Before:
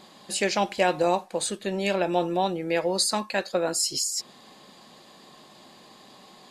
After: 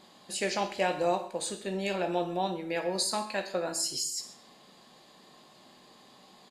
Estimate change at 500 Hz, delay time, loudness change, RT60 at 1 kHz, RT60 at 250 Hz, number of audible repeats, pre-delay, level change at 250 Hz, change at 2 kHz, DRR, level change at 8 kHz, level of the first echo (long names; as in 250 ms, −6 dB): −5.5 dB, 131 ms, −5.5 dB, 0.50 s, 0.50 s, 1, 13 ms, −6.0 dB, −5.5 dB, 5.5 dB, −5.5 dB, −18.5 dB